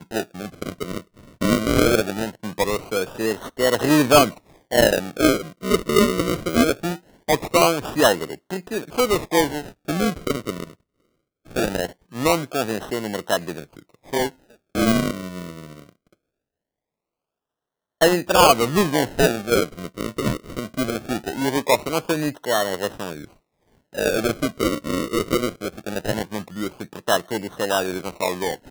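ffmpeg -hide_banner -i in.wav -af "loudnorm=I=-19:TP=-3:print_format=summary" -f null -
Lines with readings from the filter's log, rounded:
Input Integrated:    -22.2 LUFS
Input True Peak:      -0.3 dBTP
Input LRA:             6.5 LU
Input Threshold:     -32.7 LUFS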